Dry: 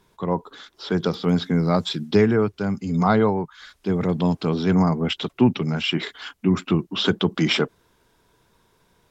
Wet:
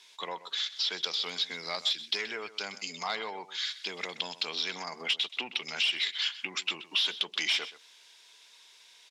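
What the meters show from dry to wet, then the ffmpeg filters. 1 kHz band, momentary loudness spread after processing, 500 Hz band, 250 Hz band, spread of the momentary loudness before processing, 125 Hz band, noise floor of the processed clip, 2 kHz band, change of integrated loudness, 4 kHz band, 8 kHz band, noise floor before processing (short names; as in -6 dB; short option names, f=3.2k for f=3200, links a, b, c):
-12.5 dB, 8 LU, -20.0 dB, -30.0 dB, 8 LU, -36.0 dB, -58 dBFS, -3.0 dB, -9.0 dB, +1.0 dB, n/a, -64 dBFS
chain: -af "aexciter=amount=6.6:drive=5:freq=2k,asoftclip=type=tanh:threshold=-8dB,acompressor=threshold=-24dB:ratio=6,highpass=760,lowpass=5.2k,aecho=1:1:127:0.168,volume=-2dB"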